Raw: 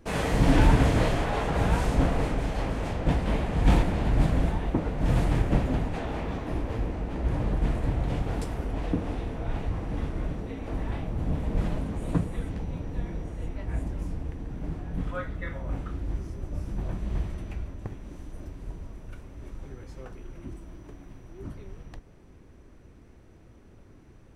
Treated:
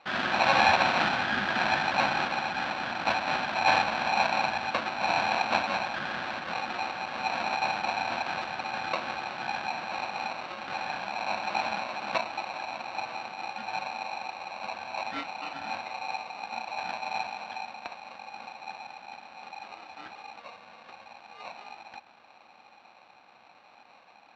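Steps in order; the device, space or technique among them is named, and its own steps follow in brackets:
0:20.39–0:20.87: high-pass filter 120 Hz → 57 Hz 6 dB per octave
ring modulator pedal into a guitar cabinet (ring modulator with a square carrier 820 Hz; loudspeaker in its box 100–4,400 Hz, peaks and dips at 120 Hz −3 dB, 220 Hz +7 dB, 430 Hz −9 dB, 920 Hz −4 dB, 1,600 Hz +9 dB, 3,400 Hz +4 dB)
level −3 dB

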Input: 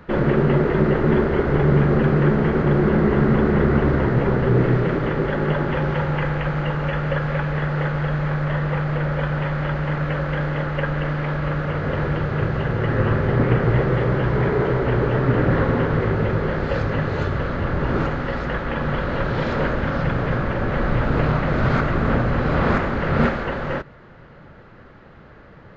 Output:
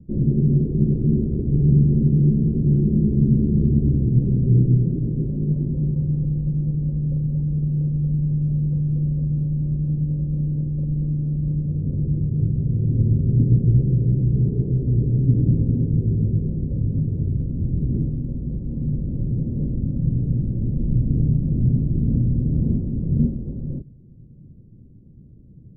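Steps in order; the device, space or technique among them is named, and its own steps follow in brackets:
the neighbour's flat through the wall (low-pass filter 280 Hz 24 dB per octave; parametric band 120 Hz +4 dB 0.76 octaves)

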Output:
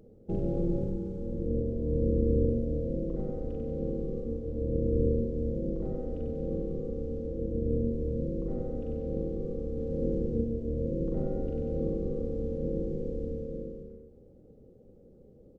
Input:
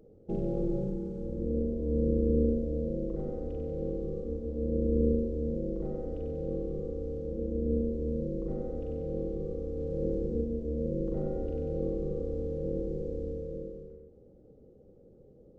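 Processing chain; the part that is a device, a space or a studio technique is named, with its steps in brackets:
octave pedal (pitch-shifted copies added −12 semitones −5 dB)

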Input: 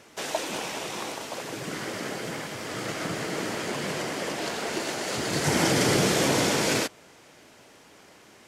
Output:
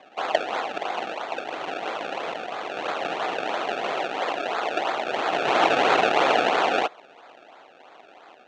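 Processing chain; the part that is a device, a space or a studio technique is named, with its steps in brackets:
circuit-bent sampling toy (sample-and-hold swept by an LFO 30×, swing 100% 3 Hz; loudspeaker in its box 510–5,300 Hz, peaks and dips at 740 Hz +8 dB, 1,300 Hz +4 dB, 2,700 Hz +6 dB, 5,000 Hz −8 dB)
level +4.5 dB

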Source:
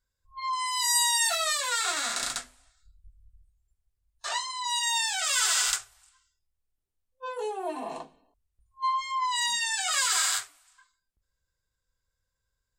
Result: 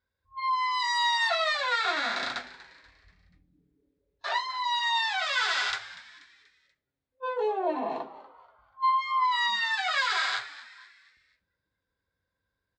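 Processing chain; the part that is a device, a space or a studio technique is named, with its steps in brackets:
frequency-shifting delay pedal into a guitar cabinet (echo with shifted repeats 241 ms, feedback 44%, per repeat +130 Hz, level −17 dB; loudspeaker in its box 96–3,700 Hz, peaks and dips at 150 Hz −8 dB, 1,200 Hz −4 dB, 2,900 Hz −8 dB)
level +5 dB

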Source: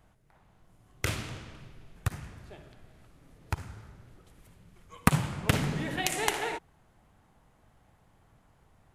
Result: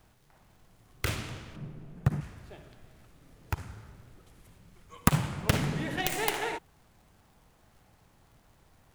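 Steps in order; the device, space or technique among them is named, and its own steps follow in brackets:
record under a worn stylus (stylus tracing distortion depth 0.46 ms; surface crackle; pink noise bed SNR 33 dB)
0:01.56–0:02.21: drawn EQ curve 100 Hz 0 dB, 150 Hz +13 dB, 3,800 Hz −7 dB

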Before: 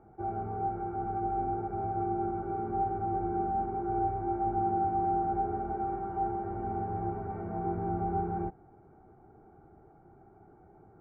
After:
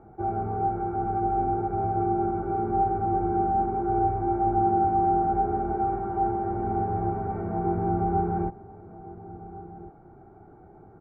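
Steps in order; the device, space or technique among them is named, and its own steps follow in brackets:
shout across a valley (high-frequency loss of the air 210 metres; slap from a distant wall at 240 metres, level −16 dB)
level +7 dB

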